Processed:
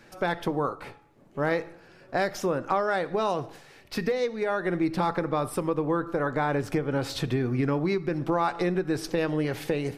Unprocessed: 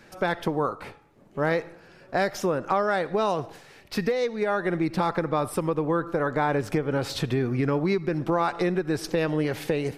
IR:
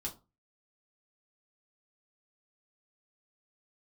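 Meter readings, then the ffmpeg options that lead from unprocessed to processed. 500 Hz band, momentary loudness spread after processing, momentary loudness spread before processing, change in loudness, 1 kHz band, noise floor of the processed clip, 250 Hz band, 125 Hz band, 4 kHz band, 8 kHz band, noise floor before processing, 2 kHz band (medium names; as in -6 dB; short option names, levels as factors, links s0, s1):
-2.0 dB, 6 LU, 5 LU, -1.5 dB, -1.5 dB, -54 dBFS, -1.0 dB, -1.5 dB, -1.5 dB, -1.5 dB, -53 dBFS, -1.5 dB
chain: -filter_complex "[0:a]asplit=2[s0][s1];[1:a]atrim=start_sample=2205[s2];[s1][s2]afir=irnorm=-1:irlink=0,volume=0.266[s3];[s0][s3]amix=inputs=2:normalize=0,volume=0.708"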